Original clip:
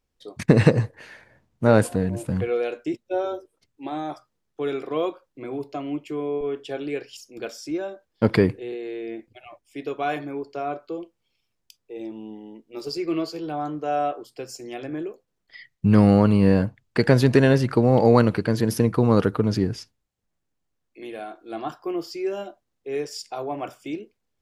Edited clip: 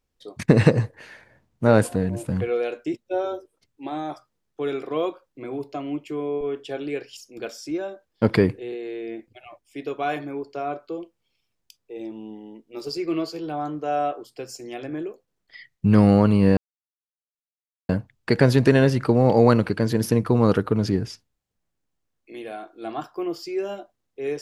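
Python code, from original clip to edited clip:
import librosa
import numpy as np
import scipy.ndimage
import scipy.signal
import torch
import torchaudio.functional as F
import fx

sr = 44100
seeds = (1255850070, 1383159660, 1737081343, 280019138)

y = fx.edit(x, sr, fx.insert_silence(at_s=16.57, length_s=1.32), tone=tone)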